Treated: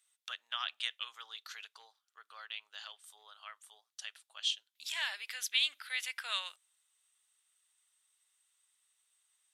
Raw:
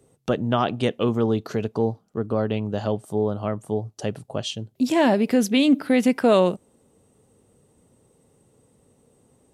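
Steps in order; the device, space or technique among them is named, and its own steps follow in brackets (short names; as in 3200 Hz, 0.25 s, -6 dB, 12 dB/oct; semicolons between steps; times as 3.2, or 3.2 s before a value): headphones lying on a table (HPF 1500 Hz 24 dB/oct; bell 3500 Hz +7 dB 0.42 oct); gain -6.5 dB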